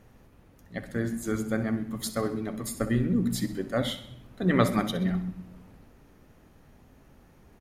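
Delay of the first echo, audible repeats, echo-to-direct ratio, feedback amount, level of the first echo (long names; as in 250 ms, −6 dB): 64 ms, 4, −13.0 dB, 49%, −14.0 dB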